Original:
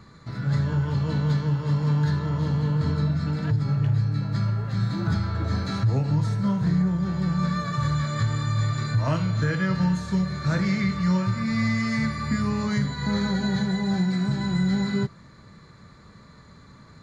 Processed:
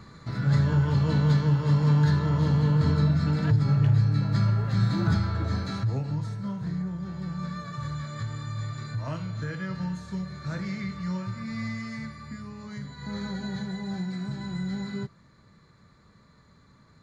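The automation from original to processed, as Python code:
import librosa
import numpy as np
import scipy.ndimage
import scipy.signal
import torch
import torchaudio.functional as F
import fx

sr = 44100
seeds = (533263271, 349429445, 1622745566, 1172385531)

y = fx.gain(x, sr, db=fx.line((5.01, 1.5), (6.4, -9.0), (11.67, -9.0), (12.55, -16.0), (13.24, -8.5)))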